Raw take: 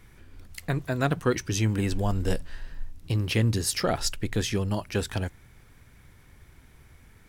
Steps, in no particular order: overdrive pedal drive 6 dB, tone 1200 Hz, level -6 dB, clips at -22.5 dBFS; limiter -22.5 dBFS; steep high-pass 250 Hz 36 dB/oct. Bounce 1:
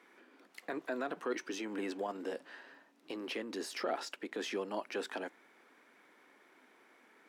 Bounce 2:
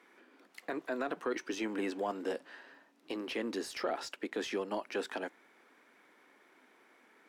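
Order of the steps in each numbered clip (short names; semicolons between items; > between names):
limiter > overdrive pedal > steep high-pass; steep high-pass > limiter > overdrive pedal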